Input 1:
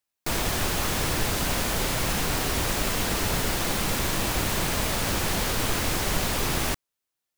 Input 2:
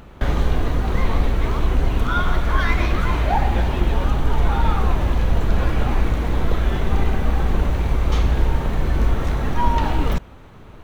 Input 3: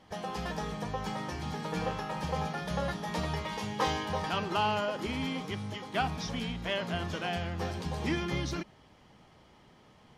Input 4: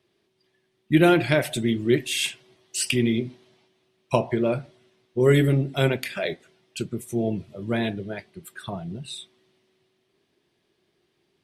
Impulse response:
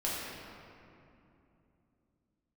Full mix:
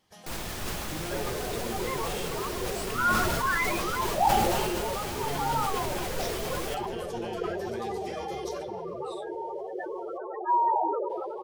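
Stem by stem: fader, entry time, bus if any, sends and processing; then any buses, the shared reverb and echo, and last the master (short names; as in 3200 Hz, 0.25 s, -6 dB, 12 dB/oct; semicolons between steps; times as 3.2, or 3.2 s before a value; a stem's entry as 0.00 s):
-12.5 dB, 0.00 s, send -12 dB, dry
-1.5 dB, 0.90 s, no send, steep high-pass 340 Hz 96 dB/oct; loudest bins only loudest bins 8
-3.0 dB, 0.00 s, send -10.5 dB, pre-emphasis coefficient 0.8
-16.0 dB, 0.00 s, no send, limiter -16 dBFS, peak gain reduction 11.5 dB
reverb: on, RT60 2.8 s, pre-delay 5 ms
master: sustainer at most 20 dB/s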